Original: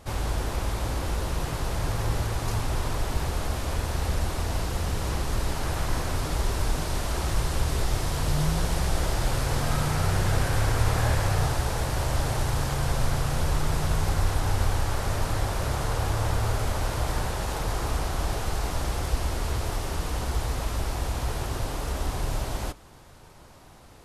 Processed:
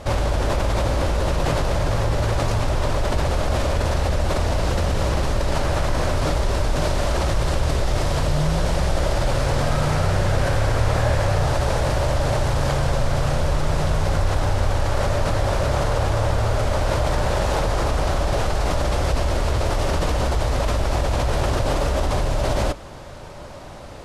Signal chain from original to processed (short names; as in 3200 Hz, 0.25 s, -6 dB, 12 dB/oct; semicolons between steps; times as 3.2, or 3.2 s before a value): bell 580 Hz +9 dB 0.28 oct; in parallel at +2 dB: negative-ratio compressor -31 dBFS, ratio -1; on the sum: air absorption 50 m; gain +1.5 dB